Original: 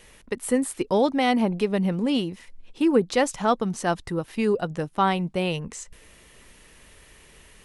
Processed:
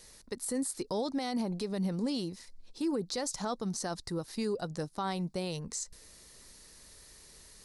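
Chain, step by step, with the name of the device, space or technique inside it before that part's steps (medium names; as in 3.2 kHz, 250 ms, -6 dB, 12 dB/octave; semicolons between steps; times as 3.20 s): over-bright horn tweeter (resonant high shelf 3.6 kHz +7 dB, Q 3; peak limiter -18 dBFS, peak gain reduction 10 dB); trim -7 dB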